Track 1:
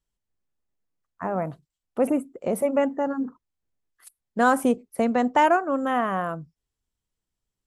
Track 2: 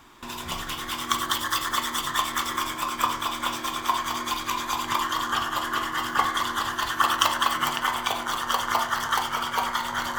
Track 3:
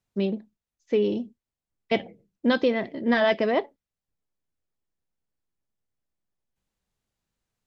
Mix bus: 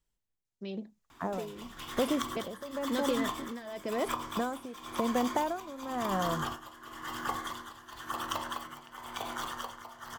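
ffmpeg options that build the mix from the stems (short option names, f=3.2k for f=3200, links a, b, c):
-filter_complex "[0:a]volume=1dB,asplit=2[a][b];[1:a]adelay=1100,volume=0.5dB[c];[2:a]equalizer=f=6.7k:w=1.1:g=9,adelay=450,volume=-1.5dB[d];[b]apad=whole_len=497724[e];[c][e]sidechaingate=range=-6dB:threshold=-51dB:ratio=16:detection=peak[f];[a][f][d]amix=inputs=3:normalize=0,acrossover=split=780|5600[g][h][i];[g]acompressor=threshold=-28dB:ratio=4[j];[h]acompressor=threshold=-37dB:ratio=4[k];[i]acompressor=threshold=-46dB:ratio=4[l];[j][k][l]amix=inputs=3:normalize=0,tremolo=f=0.96:d=0.81"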